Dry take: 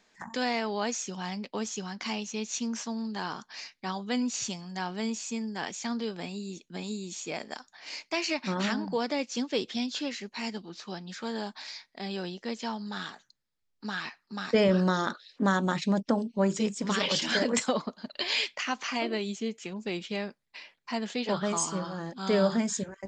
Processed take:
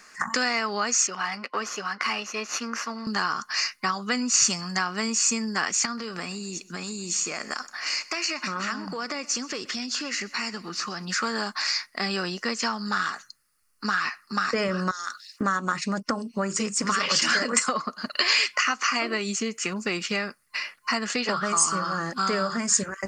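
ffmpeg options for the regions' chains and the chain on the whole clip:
-filter_complex "[0:a]asettb=1/sr,asplit=3[a][b][c];[a]atrim=end=1.074[d];[b]atrim=start=1.07:end=3.07,asetpts=PTS-STARTPTS,afade=t=in:d=0.004:c=qsin,afade=t=out:st=1.996:d=0.004:c=qsin,aeval=exprs='if(lt(val(0),0),0.447*val(0),val(0))':c=same,highpass=330,lowpass=3.3k[e];[c]atrim=start=3.066[f];[d][e]acrossfade=d=0.004:c1=hsin:c2=qsin[g];[g][f]acrossfade=d=0.004:c1=qsin:c2=hsin,asettb=1/sr,asplit=3[h][i][j];[h]atrim=end=5.854[k];[i]atrim=start=5.85:end=11.05,asetpts=PTS-STARTPTS,afade=t=in:d=0.004:c=qsin,afade=t=out:st=5.196:d=0.004:c=qsin,acompressor=threshold=-39dB:ratio=6:attack=3.2:release=140:knee=1:detection=peak,aecho=1:1:127|254|381:0.0891|0.0374|0.0157,atrim=end_sample=229320[l];[j]atrim=start=11.046[m];[k][l]acrossfade=d=0.004:c1=hsin:c2=qsin[n];[n][m]acrossfade=d=0.004:c1=qsin:c2=hsin,asettb=1/sr,asplit=3[o][p][q];[o]atrim=end=14.914[r];[p]atrim=start=14.91:end=15.41,asetpts=PTS-STARTPTS,afade=t=in:d=0.004:c=qsin,afade=t=out:st=0.496:d=0.004:c=qsin,aderivative,bandreject=f=60:t=h:w=6,bandreject=f=120:t=h:w=6,bandreject=f=180:t=h:w=6[s];[q]atrim=start=15.406[t];[r][s]acrossfade=d=0.004:c1=hsin:c2=qsin[u];[u][t]acrossfade=d=0.004:c1=qsin:c2=hsin,superequalizer=10b=3.55:11b=1.78:13b=0.316:16b=2.51,acompressor=threshold=-33dB:ratio=5,highshelf=f=2k:g=11.5,volume=7dB"

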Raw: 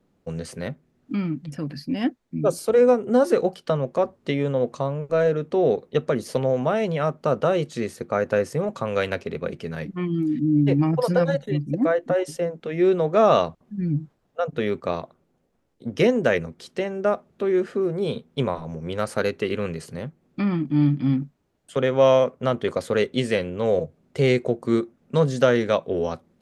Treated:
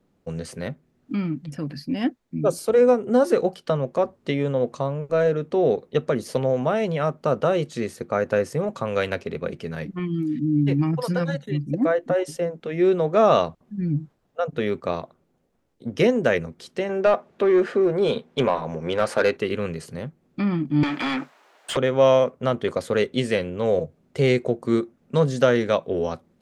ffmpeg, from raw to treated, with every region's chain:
-filter_complex "[0:a]asettb=1/sr,asplit=3[a][b][c];[a]atrim=end=9.994[d];[b]atrim=start=9.99:end=11.64,asetpts=PTS-STARTPTS,afade=t=in:d=0.004:c=qsin,afade=t=out:st=1.646:d=0.004:c=qsin,highpass=52,equalizer=f=600:w=1.2:g=-8[e];[c]atrim=start=11.636[f];[d][e]acrossfade=d=0.004:c1=hsin:c2=qsin[g];[g][f]acrossfade=d=0.004:c1=qsin:c2=hsin,asettb=1/sr,asplit=3[h][i][j];[h]atrim=end=16.894[k];[i]atrim=start=16.89:end=19.37,asetpts=PTS-STARTPTS,afade=t=in:d=0.004:c=qsin,afade=t=out:st=2.476:d=0.004:c=qsin,asplit=2[l][m];[m]highpass=f=720:p=1,volume=17dB,asoftclip=type=tanh:threshold=-8dB[n];[l][n]amix=inputs=2:normalize=0,lowpass=f=2.3k:p=1,volume=-6dB,bandreject=f=1.3k:w=16[o];[j]atrim=start=19.366[p];[k][o]acrossfade=d=0.004:c1=hsin:c2=qsin[q];[q][p]acrossfade=d=0.004:c1=qsin:c2=hsin,asettb=1/sr,asplit=3[r][s][t];[r]atrim=end=20.834[u];[s]atrim=start=20.83:end=21.77,asetpts=PTS-STARTPTS,afade=t=in:d=0.004:c=qsin,afade=t=out:st=0.936:d=0.004:c=qsin,highpass=770,acompressor=threshold=-38dB:ratio=5:attack=3.2:release=140:knee=1:detection=peak,asplit=2[v][w];[w]highpass=f=720:p=1,volume=34dB,asoftclip=type=tanh:threshold=-12dB[x];[v][x]amix=inputs=2:normalize=0,lowpass=f=2k:p=1,volume=-6dB[y];[t]atrim=start=21.766[z];[u][y]acrossfade=d=0.004:c1=hsin:c2=qsin[aa];[aa][z]acrossfade=d=0.004:c1=qsin:c2=hsin"

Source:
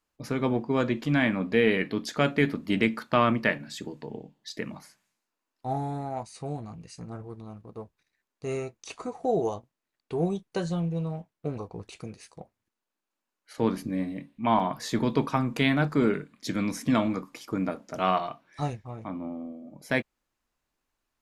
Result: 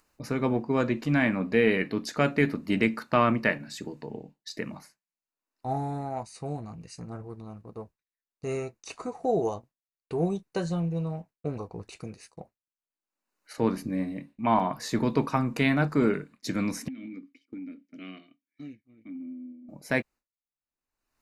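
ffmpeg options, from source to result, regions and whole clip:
-filter_complex "[0:a]asettb=1/sr,asplit=3[a][b][c];[a]atrim=end=16.884[d];[b]atrim=start=16.88:end=19.69,asetpts=PTS-STARTPTS,afade=t=in:d=0.004:c=qsin,afade=t=out:st=2.806:d=0.004:c=qsin,asplit=3[e][f][g];[e]bandpass=f=270:t=q:w=8,volume=0dB[h];[f]bandpass=f=2.29k:t=q:w=8,volume=-6dB[i];[g]bandpass=f=3.01k:t=q:w=8,volume=-9dB[j];[h][i][j]amix=inputs=3:normalize=0,acompressor=threshold=-35dB:ratio=16:attack=3.2:release=140:knee=1:detection=peak[k];[c]atrim=start=19.686[l];[d][k]acrossfade=d=0.004:c1=hsin:c2=qsin[m];[m][l]acrossfade=d=0.004:c1=qsin:c2=hsin,agate=range=-33dB:threshold=-45dB:ratio=3:detection=peak,bandreject=f=3.3k:w=5.8,acompressor=mode=upward:threshold=-39dB:ratio=2.5"

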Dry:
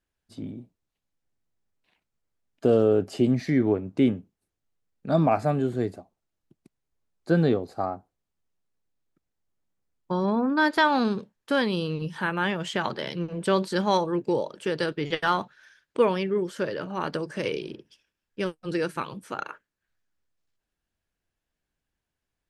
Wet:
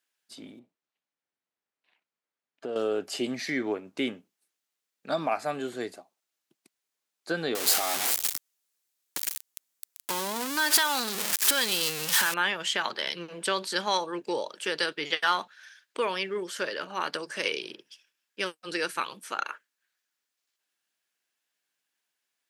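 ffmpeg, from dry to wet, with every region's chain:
-filter_complex "[0:a]asettb=1/sr,asplit=3[a][b][c];[a]atrim=end=0.594[d];[b]atrim=start=0.59:end=2.76,asetpts=PTS-STARTPTS,afade=t=in:d=0.004:c=qsin,afade=t=out:st=2.166:d=0.004:c=qsin,lowpass=f=1.4k:p=1,acompressor=threshold=-29dB:ratio=2:attack=3.2:release=140:knee=1:detection=peak[e];[c]atrim=start=2.756[f];[d][e]acrossfade=d=0.004:c1=hsin:c2=qsin[g];[g][f]acrossfade=d=0.004:c1=qsin:c2=hsin,asettb=1/sr,asplit=3[h][i][j];[h]atrim=end=7.554[k];[i]atrim=start=7.55:end=12.34,asetpts=PTS-STARTPTS,afade=t=in:d=0.004:c=qsin,afade=t=out:st=4.786:d=0.004:c=qsin,aeval=exprs='val(0)+0.5*0.0501*sgn(val(0))':c=same,acompressor=threshold=-25dB:ratio=4:attack=3.2:release=140:knee=1:detection=peak,aemphasis=mode=production:type=cd[l];[j]atrim=start=12.336[m];[k][l]acrossfade=d=0.004:c1=hsin:c2=qsin[n];[n][m]acrossfade=d=0.004:c1=qsin:c2=hsin,highpass=260,alimiter=limit=-14.5dB:level=0:latency=1:release=284,tiltshelf=f=970:g=-8"

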